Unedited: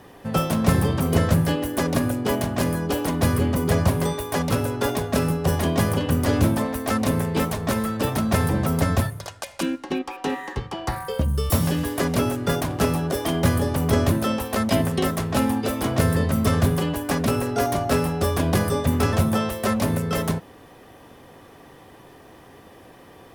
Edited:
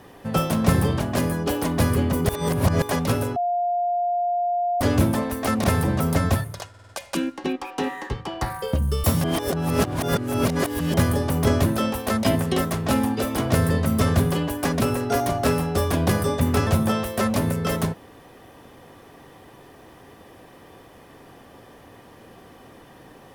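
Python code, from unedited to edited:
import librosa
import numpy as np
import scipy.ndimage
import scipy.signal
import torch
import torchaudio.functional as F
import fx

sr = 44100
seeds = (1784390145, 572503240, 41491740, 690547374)

y = fx.edit(x, sr, fx.cut(start_s=1.0, length_s=1.43),
    fx.reverse_span(start_s=3.72, length_s=0.53),
    fx.bleep(start_s=4.79, length_s=1.45, hz=704.0, db=-20.0),
    fx.cut(start_s=7.07, length_s=1.23),
    fx.stutter(start_s=9.35, slice_s=0.05, count=5),
    fx.reverse_span(start_s=11.7, length_s=1.7), tone=tone)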